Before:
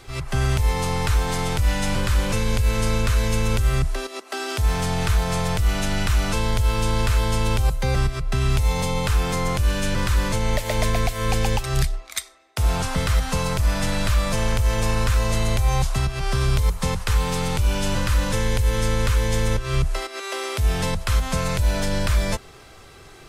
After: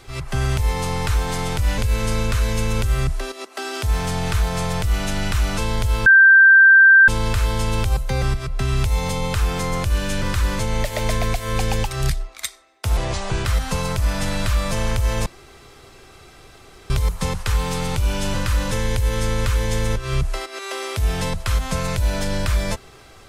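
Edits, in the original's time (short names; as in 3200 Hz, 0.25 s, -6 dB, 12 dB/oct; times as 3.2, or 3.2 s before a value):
1.78–2.53 cut
6.81 add tone 1570 Hz -6.5 dBFS 1.02 s
12.7–13.06 speed 75%
14.87–16.51 room tone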